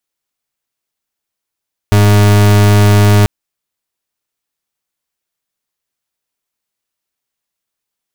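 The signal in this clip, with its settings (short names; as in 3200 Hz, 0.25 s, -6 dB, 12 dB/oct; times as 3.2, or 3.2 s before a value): pulse 103 Hz, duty 39% -7 dBFS 1.34 s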